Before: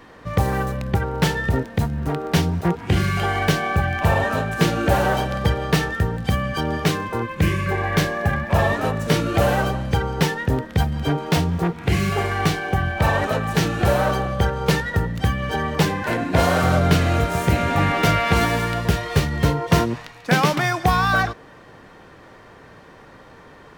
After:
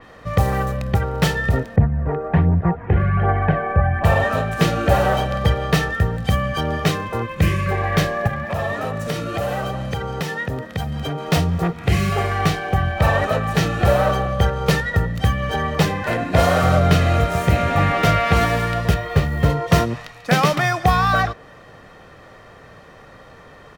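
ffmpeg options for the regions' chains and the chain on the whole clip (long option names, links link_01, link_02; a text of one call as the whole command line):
ffmpeg -i in.wav -filter_complex "[0:a]asettb=1/sr,asplit=3[link_01][link_02][link_03];[link_01]atrim=end=1.764[link_04];[link_02]atrim=start=1.76:end=4.04,asetpts=PTS-STARTPTS,afade=type=in:duration=0.004:curve=qsin,afade=type=out:start_time=2.276:duration=0.004:curve=qsin,lowpass=frequency=1800:width=0.5412,lowpass=frequency=1800:width=1.3066,bandreject=frequency=1300:width=6.8,aphaser=in_gain=1:out_gain=1:delay=2.4:decay=0.42:speed=1.3:type=triangular[link_05];[link_03]atrim=start=4.036[link_06];[link_04][link_05]acrossfade=duration=0.004:curve1=hsin:curve2=qsin[link_07];[link_07][link_06]acrossfade=duration=0.004:curve1=qsin:curve2=hsin,asettb=1/sr,asplit=3[link_08][link_09][link_10];[link_08]atrim=end=8.274[link_11];[link_09]atrim=start=8.27:end=11.28,asetpts=PTS-STARTPTS,afade=type=in:duration=0.004:curve=qsin,afade=type=out:start_time=3.006:duration=0.004:curve=qsin,highpass=92,acompressor=threshold=-23dB:ratio=3:attack=3.2:release=140:knee=1:detection=peak[link_12];[link_10]atrim=start=11.276[link_13];[link_11][link_12]acrossfade=duration=0.004:curve1=hsin:curve2=qsin[link_14];[link_14][link_13]acrossfade=duration=0.004:curve1=qsin:curve2=hsin,asettb=1/sr,asplit=3[link_15][link_16][link_17];[link_15]atrim=end=18.944[link_18];[link_16]atrim=start=18.94:end=19.5,asetpts=PTS-STARTPTS,afade=type=in:duration=0.004:curve=qsin,afade=type=out:start_time=0.556:duration=0.004:curve=qsin,lowpass=frequency=2100:poles=1,acrusher=bits=7:mode=log:mix=0:aa=0.000001[link_19];[link_17]atrim=start=19.496[link_20];[link_18][link_19]acrossfade=duration=0.004:curve1=hsin:curve2=qsin[link_21];[link_21][link_20]acrossfade=duration=0.004:curve1=qsin:curve2=hsin,aecho=1:1:1.6:0.34,adynamicequalizer=threshold=0.0158:dfrequency=4400:dqfactor=0.7:tfrequency=4400:tqfactor=0.7:attack=5:release=100:ratio=0.375:range=2:mode=cutabove:tftype=highshelf,volume=1dB" out.wav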